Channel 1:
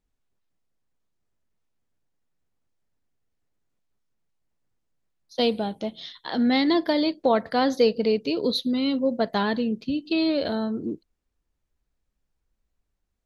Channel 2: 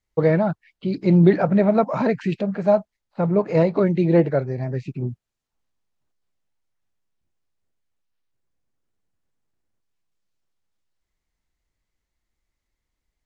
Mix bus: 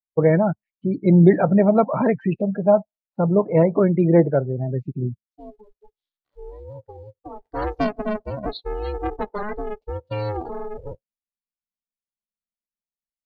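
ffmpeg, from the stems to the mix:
-filter_complex "[0:a]highshelf=f=2.2k:g=-4.5,aeval=exprs='val(0)*sgn(sin(2*PI*210*n/s))':c=same,volume=-2.5dB,afade=t=in:st=7.35:d=0.28:silence=0.251189[a];[1:a]volume=1.5dB[b];[a][b]amix=inputs=2:normalize=0,afftdn=nr=35:nf=-28"

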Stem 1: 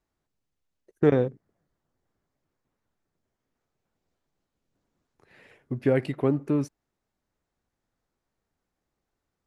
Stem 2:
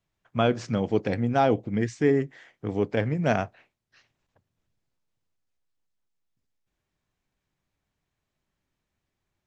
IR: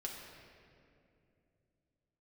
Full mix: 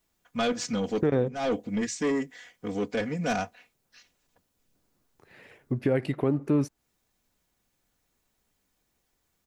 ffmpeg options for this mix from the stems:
-filter_complex "[0:a]volume=2.5dB,asplit=2[a][b];[1:a]crystalizer=i=4:c=0,aecho=1:1:4.1:0.86,asoftclip=type=tanh:threshold=-17dB,volume=-4dB[c];[b]apad=whole_len=417724[d];[c][d]sidechaincompress=threshold=-36dB:ratio=10:attack=21:release=185[e];[a][e]amix=inputs=2:normalize=0,alimiter=limit=-14.5dB:level=0:latency=1:release=158"

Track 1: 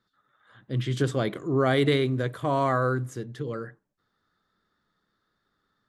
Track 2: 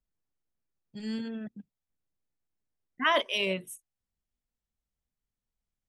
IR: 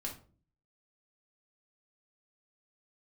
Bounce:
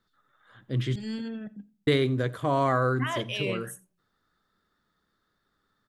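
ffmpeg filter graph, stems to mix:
-filter_complex "[0:a]volume=0dB,asplit=3[a][b][c];[a]atrim=end=0.96,asetpts=PTS-STARTPTS,afade=t=out:st=0.956:d=0.004:c=hsin[d];[b]atrim=start=0.96:end=1.87,asetpts=PTS-STARTPTS,volume=0[e];[c]atrim=start=1.87,asetpts=PTS-STARTPTS,afade=t=in:d=0.004:c=hsin[f];[d][e][f]concat=n=3:v=0:a=1,asplit=2[g][h];[h]volume=-22.5dB[i];[1:a]alimiter=limit=-22.5dB:level=0:latency=1:release=81,volume=-0.5dB,asplit=3[j][k][l];[k]volume=-12dB[m];[l]volume=-22dB[n];[2:a]atrim=start_sample=2205[o];[m][o]afir=irnorm=-1:irlink=0[p];[i][n]amix=inputs=2:normalize=0,aecho=0:1:88:1[q];[g][j][p][q]amix=inputs=4:normalize=0"

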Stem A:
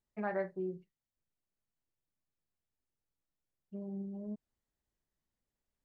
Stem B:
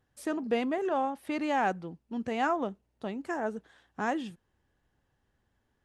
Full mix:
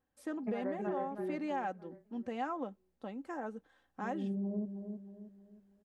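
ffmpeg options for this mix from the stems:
-filter_complex "[0:a]lowshelf=f=480:g=6,adelay=300,volume=-2dB,asplit=2[a][b];[b]volume=-9dB[c];[1:a]aecho=1:1:3.8:0.48,volume=-13.5dB,asplit=2[d][e];[e]apad=whole_len=270774[f];[a][f]sidechaincompress=threshold=-47dB:ratio=8:attack=16:release=112[g];[c]aecho=0:1:315|630|945|1260|1575|1890:1|0.4|0.16|0.064|0.0256|0.0102[h];[g][d][h]amix=inputs=3:normalize=0,equalizer=f=540:w=0.32:g=6.5,acompressor=threshold=-32dB:ratio=6"

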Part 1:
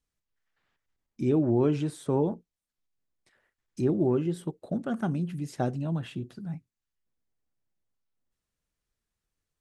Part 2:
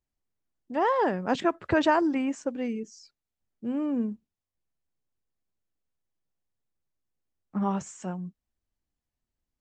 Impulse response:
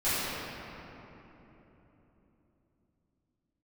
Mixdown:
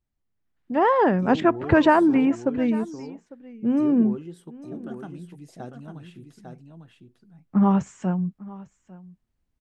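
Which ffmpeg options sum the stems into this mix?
-filter_complex "[0:a]bandreject=f=580:w=12,volume=-12.5dB,asplit=2[a][b];[b]volume=-5.5dB[c];[1:a]bass=f=250:g=10,treble=f=4k:g=-11,volume=1dB,asplit=2[d][e];[e]volume=-20.5dB[f];[c][f]amix=inputs=2:normalize=0,aecho=0:1:850:1[g];[a][d][g]amix=inputs=3:normalize=0,lowshelf=f=160:g=-5.5,dynaudnorm=f=120:g=9:m=4.5dB"

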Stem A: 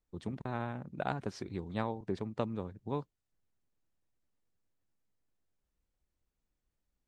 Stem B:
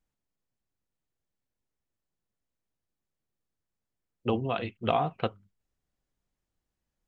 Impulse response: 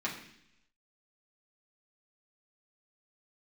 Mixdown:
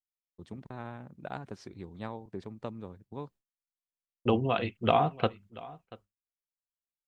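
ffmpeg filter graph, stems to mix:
-filter_complex "[0:a]adelay=250,volume=-4.5dB[a];[1:a]volume=2dB,asplit=2[b][c];[c]volume=-20dB,aecho=0:1:684:1[d];[a][b][d]amix=inputs=3:normalize=0,agate=range=-33dB:threshold=-50dB:ratio=3:detection=peak"

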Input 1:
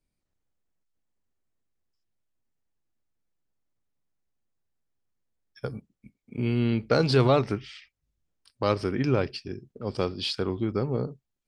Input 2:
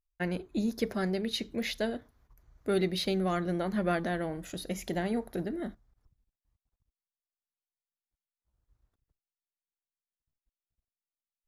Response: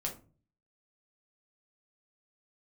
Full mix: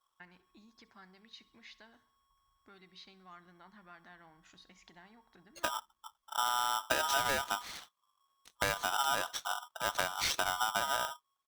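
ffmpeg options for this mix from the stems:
-filter_complex "[0:a]aeval=exprs='val(0)*sgn(sin(2*PI*1100*n/s))':c=same,volume=0dB[a];[1:a]acompressor=threshold=-37dB:ratio=4,lowpass=f=6.3k:w=0.5412,lowpass=f=6.3k:w=1.3066,lowshelf=f=720:t=q:w=3:g=-9,volume=-12.5dB,asplit=2[b][c];[c]volume=-19dB,aecho=0:1:66|132|198|264|330|396|462|528:1|0.54|0.292|0.157|0.085|0.0459|0.0248|0.0134[d];[a][b][d]amix=inputs=3:normalize=0,acompressor=threshold=-28dB:ratio=10"

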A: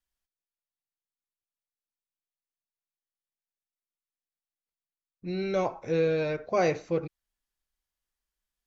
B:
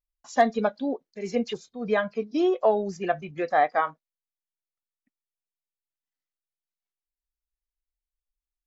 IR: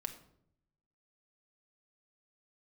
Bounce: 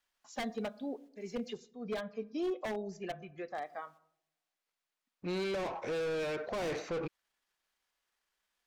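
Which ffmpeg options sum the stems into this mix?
-filter_complex "[0:a]aeval=exprs='if(lt(val(0),0),0.708*val(0),val(0))':c=same,asplit=2[a][b];[b]highpass=f=720:p=1,volume=31dB,asoftclip=type=tanh:threshold=-14.5dB[c];[a][c]amix=inputs=2:normalize=0,lowpass=f=2.7k:p=1,volume=-6dB,volume=-0.5dB,asplit=3[d][e][f];[d]atrim=end=1.55,asetpts=PTS-STARTPTS,afade=t=out:st=1.546:d=0.004:c=hsin[g];[e]atrim=start=1.55:end=3.63,asetpts=PTS-STARTPTS,volume=0[h];[f]atrim=start=3.63,asetpts=PTS-STARTPTS,afade=t=in:d=0.004:c=hsin[i];[g][h][i]concat=n=3:v=0:a=1[j];[1:a]volume=-13.5dB,afade=t=out:st=3.23:d=0.45:silence=0.473151,asplit=3[k][l][m];[l]volume=-6dB[n];[m]apad=whole_len=382215[o];[j][o]sidechaingate=range=-11dB:threshold=-58dB:ratio=16:detection=peak[p];[2:a]atrim=start_sample=2205[q];[n][q]afir=irnorm=-1:irlink=0[r];[p][k][r]amix=inputs=3:normalize=0,aeval=exprs='0.0398*(abs(mod(val(0)/0.0398+3,4)-2)-1)':c=same,acrossover=split=430|3000[s][t][u];[t]acompressor=threshold=-41dB:ratio=2[v];[s][v][u]amix=inputs=3:normalize=0"

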